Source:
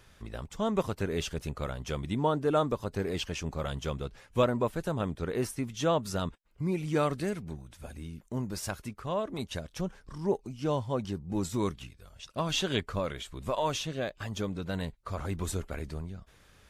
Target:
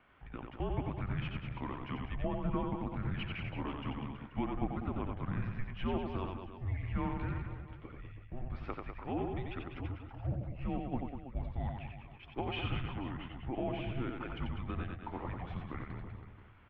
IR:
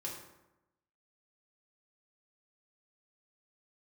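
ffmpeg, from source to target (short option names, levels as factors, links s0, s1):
-filter_complex "[0:a]asettb=1/sr,asplit=3[s0][s1][s2];[s0]atrim=end=10.814[s3];[s1]atrim=start=10.81:end=11.68,asetpts=PTS-STARTPTS,afade=t=in:d=0.004:c=qsin,afade=t=out:st=0.866:d=0.004:c=qsin,agate=range=0.178:threshold=0.0316:ratio=16:detection=peak[s4];[s2]atrim=start=11.676[s5];[s3][s4]acrossfade=d=0.004:c1=hsin:c2=qsin[s6];[s6][s5]acrossfade=d=0.004:c1=qsin:c2=hsin,asettb=1/sr,asplit=3[s7][s8][s9];[s7]atrim=end=12.664[s10];[s8]atrim=start=12.66:end=14.04,asetpts=PTS-STARTPTS,afade=t=in:d=0.004:c=qsin,afade=t=out:st=1.376:d=0.004:c=qsin,aemphasis=mode=reproduction:type=bsi[s11];[s9]atrim=start=14.036[s12];[s10][s11]acrossfade=d=0.004:c1=hsin:c2=qsin[s13];[s13][s12]acrossfade=d=0.004:c1=qsin:c2=hsin,acompressor=threshold=0.0398:ratio=6,asplit=2[s14][s15];[s15]aecho=0:1:90|198|327.6|483.1|669.7:0.631|0.398|0.251|0.158|0.1[s16];[s14][s16]amix=inputs=2:normalize=0,highpass=f=170:t=q:w=0.5412,highpass=f=170:t=q:w=1.307,lowpass=f=3000:t=q:w=0.5176,lowpass=f=3000:t=q:w=0.7071,lowpass=f=3000:t=q:w=1.932,afreqshift=-270,volume=0.708"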